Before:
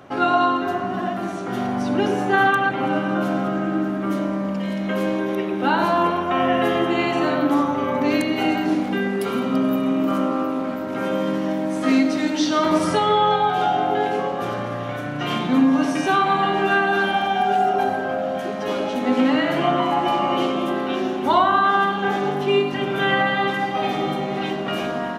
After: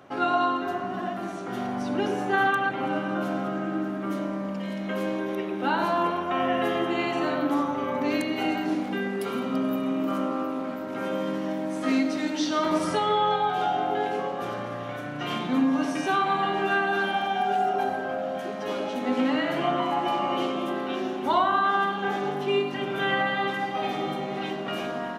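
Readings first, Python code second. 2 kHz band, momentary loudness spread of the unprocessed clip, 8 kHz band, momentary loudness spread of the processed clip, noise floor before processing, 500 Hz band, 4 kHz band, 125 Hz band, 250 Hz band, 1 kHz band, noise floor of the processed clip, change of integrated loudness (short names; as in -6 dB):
-5.5 dB, 7 LU, -5.5 dB, 7 LU, -27 dBFS, -6.0 dB, -5.5 dB, -7.5 dB, -6.5 dB, -5.5 dB, -33 dBFS, -6.0 dB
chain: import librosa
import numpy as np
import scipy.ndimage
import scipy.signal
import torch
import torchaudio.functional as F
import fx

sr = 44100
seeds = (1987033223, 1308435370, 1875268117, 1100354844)

y = fx.low_shelf(x, sr, hz=110.0, db=-7.0)
y = y * librosa.db_to_amplitude(-5.5)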